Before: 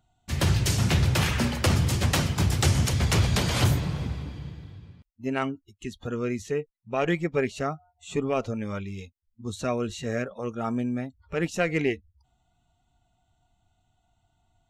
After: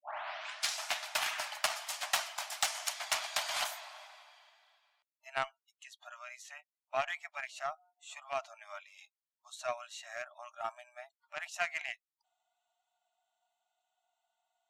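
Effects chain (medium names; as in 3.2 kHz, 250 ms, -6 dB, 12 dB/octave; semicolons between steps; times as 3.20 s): tape start-up on the opening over 0.85 s; brick-wall FIR high-pass 590 Hz; Chebyshev shaper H 7 -25 dB, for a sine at -10 dBFS; trim -3 dB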